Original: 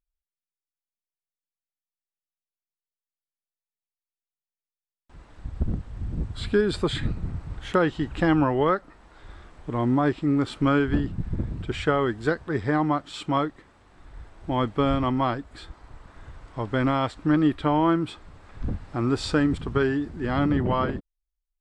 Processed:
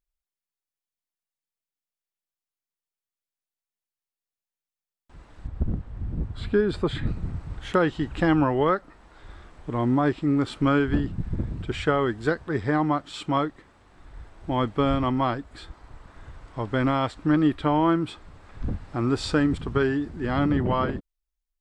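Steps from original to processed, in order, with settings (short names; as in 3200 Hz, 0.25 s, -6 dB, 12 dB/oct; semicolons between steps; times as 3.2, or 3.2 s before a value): 5.47–7.07 high shelf 3500 Hz -11.5 dB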